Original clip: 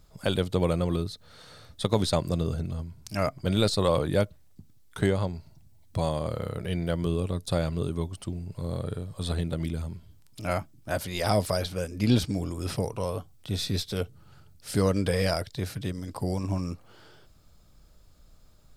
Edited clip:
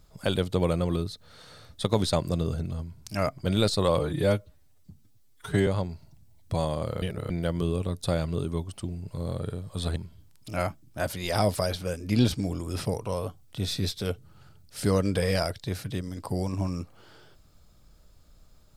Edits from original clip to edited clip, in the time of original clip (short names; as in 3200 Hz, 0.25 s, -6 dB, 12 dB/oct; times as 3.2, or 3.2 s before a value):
3.99–5.11 stretch 1.5×
6.46–6.74 reverse
9.4–9.87 cut